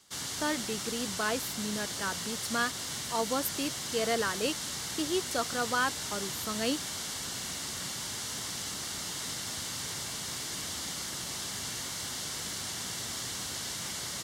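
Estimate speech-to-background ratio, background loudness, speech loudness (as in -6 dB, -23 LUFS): 0.5 dB, -34.5 LUFS, -34.0 LUFS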